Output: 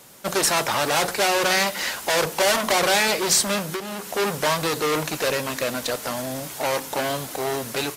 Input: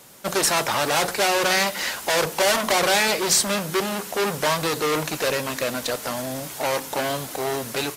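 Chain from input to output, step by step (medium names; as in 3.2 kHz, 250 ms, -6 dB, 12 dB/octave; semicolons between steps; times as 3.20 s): 3.61–4.12 s: compression 12:1, threshold -25 dBFS, peak gain reduction 9.5 dB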